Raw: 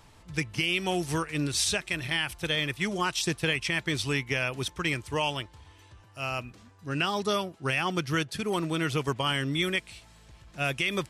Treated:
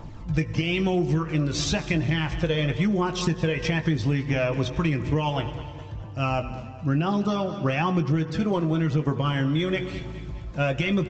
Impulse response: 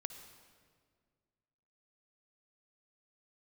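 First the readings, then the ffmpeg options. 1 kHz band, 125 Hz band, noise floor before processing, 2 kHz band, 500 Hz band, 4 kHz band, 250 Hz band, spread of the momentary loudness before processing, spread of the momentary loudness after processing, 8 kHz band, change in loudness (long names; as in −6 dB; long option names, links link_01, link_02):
+2.5 dB, +9.5 dB, −56 dBFS, −2.0 dB, +5.0 dB, −3.0 dB, +8.0 dB, 7 LU, 8 LU, −4.5 dB, +3.5 dB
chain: -filter_complex "[0:a]equalizer=frequency=76:width=2.4:gain=-8,aphaser=in_gain=1:out_gain=1:delay=2.1:decay=0.43:speed=0.99:type=triangular,tiltshelf=frequency=1100:gain=8.5,bandreject=frequency=420:width=12,bandreject=frequency=121.5:width_type=h:width=4,bandreject=frequency=243:width_type=h:width=4,bandreject=frequency=364.5:width_type=h:width=4,bandreject=frequency=486:width_type=h:width=4,bandreject=frequency=607.5:width_type=h:width=4,bandreject=frequency=729:width_type=h:width=4,bandreject=frequency=850.5:width_type=h:width=4,bandreject=frequency=972:width_type=h:width=4,bandreject=frequency=1093.5:width_type=h:width=4,bandreject=frequency=1215:width_type=h:width=4,bandreject=frequency=1336.5:width_type=h:width=4,bandreject=frequency=1458:width_type=h:width=4,bandreject=frequency=1579.5:width_type=h:width=4,bandreject=frequency=1701:width_type=h:width=4,bandreject=frequency=1822.5:width_type=h:width=4,bandreject=frequency=1944:width_type=h:width=4,asplit=2[link_01][link_02];[1:a]atrim=start_sample=2205,adelay=19[link_03];[link_02][link_03]afir=irnorm=-1:irlink=0,volume=-7.5dB[link_04];[link_01][link_04]amix=inputs=2:normalize=0,acontrast=82,aecho=1:1:207|414|621|828:0.126|0.0604|0.029|0.0139,acompressor=threshold=-20dB:ratio=10,aresample=16000,aresample=44100"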